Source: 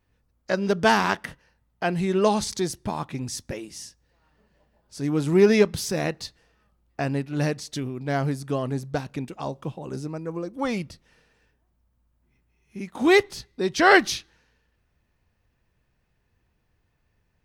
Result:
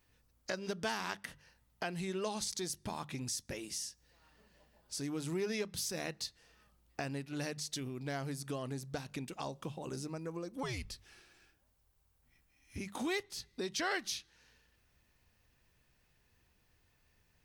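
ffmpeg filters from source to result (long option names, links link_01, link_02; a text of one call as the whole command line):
ffmpeg -i in.wav -filter_complex "[0:a]asettb=1/sr,asplit=3[link_01][link_02][link_03];[link_01]atrim=end=10.634[link_04];[link_02]atrim=start=10.63:end=12.78,asetpts=PTS-STARTPTS,afade=type=in:duration=0.004:curve=qsin,afade=type=out:start_time=2.146:duration=0.004:curve=qsin,afreqshift=-110[link_05];[link_03]atrim=start=12.776[link_06];[link_04][link_05]acrossfade=duration=0.004:curve1=hsin:curve2=qsin[link_07];[link_07][link_06]acrossfade=duration=0.004:curve1=qsin:curve2=hsin,highshelf=frequency=2400:gain=10.5,bandreject=frequency=50:width_type=h:width=6,bandreject=frequency=100:width_type=h:width=6,bandreject=frequency=150:width_type=h:width=6,bandreject=frequency=200:width_type=h:width=6,acompressor=threshold=-37dB:ratio=3,volume=-3dB" out.wav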